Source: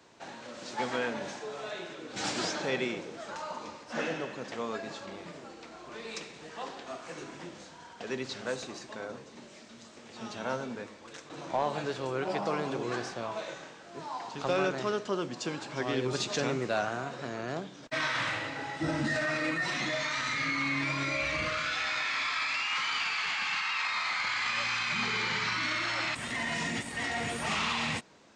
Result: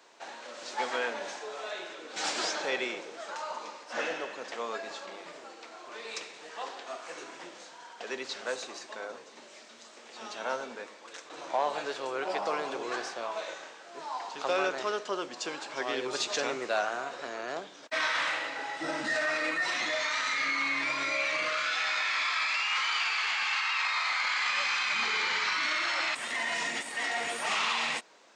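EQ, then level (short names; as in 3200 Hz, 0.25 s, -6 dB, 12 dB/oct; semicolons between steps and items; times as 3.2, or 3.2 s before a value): HPF 470 Hz 12 dB/oct; +2.0 dB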